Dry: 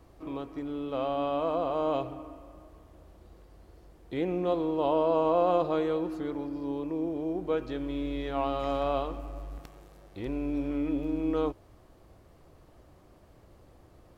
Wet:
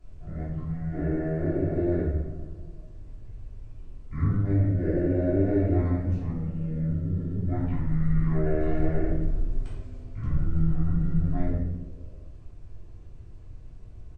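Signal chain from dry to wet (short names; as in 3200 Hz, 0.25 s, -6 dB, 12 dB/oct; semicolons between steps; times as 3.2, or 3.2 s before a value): resonant low shelf 270 Hz +8.5 dB, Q 3; pitch shift -10 st; frequency-shifting echo 0.16 s, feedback 61%, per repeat -140 Hz, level -22 dB; shoebox room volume 250 m³, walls mixed, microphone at 3.1 m; gain -8 dB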